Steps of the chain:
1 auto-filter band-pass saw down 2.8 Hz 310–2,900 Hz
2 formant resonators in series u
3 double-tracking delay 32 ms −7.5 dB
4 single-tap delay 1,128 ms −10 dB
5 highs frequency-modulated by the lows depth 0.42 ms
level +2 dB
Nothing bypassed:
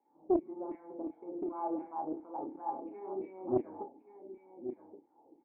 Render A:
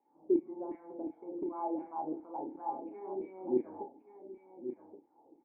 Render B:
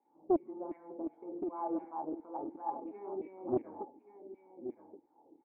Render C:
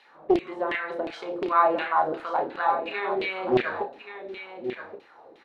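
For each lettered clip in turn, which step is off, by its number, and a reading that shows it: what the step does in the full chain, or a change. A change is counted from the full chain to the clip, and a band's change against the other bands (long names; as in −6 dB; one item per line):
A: 5, 125 Hz band −7.0 dB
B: 3, 125 Hz band −1.5 dB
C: 2, 1 kHz band +6.0 dB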